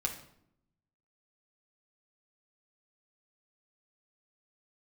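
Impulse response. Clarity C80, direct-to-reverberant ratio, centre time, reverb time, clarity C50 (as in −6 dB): 12.5 dB, −0.5 dB, 17 ms, 0.70 s, 9.0 dB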